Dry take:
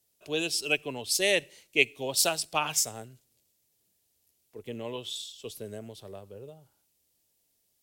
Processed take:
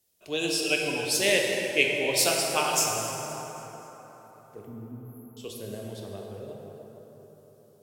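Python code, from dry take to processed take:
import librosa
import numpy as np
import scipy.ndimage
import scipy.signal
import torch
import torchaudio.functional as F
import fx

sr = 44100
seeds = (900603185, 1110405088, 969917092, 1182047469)

y = fx.brickwall_bandstop(x, sr, low_hz=330.0, high_hz=11000.0, at=(4.65, 5.37))
y = fx.echo_feedback(y, sr, ms=262, feedback_pct=53, wet_db=-20.0)
y = fx.rev_plate(y, sr, seeds[0], rt60_s=4.4, hf_ratio=0.45, predelay_ms=0, drr_db=-1.5)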